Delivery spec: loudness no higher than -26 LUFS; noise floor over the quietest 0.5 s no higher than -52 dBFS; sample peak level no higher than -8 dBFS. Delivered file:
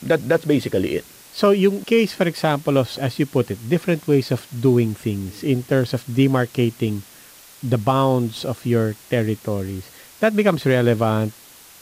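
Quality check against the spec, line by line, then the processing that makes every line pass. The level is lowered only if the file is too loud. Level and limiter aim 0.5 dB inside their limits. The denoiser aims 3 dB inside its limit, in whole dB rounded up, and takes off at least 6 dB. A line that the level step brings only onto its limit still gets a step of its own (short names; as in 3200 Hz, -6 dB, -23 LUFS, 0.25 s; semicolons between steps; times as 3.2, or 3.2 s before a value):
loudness -20.5 LUFS: fail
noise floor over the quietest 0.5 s -45 dBFS: fail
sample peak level -6.0 dBFS: fail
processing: denoiser 6 dB, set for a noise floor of -45 dBFS; gain -6 dB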